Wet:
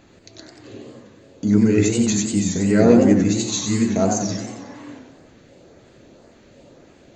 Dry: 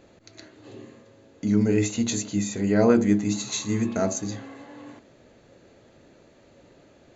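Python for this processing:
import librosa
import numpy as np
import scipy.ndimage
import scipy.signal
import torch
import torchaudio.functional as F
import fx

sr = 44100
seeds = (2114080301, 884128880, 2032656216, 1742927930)

y = fx.filter_lfo_notch(x, sr, shape='saw_up', hz=1.9, low_hz=420.0, high_hz=3800.0, q=1.6)
y = fx.echo_warbled(y, sr, ms=92, feedback_pct=55, rate_hz=2.8, cents=188, wet_db=-5.5)
y = y * 10.0 ** (5.0 / 20.0)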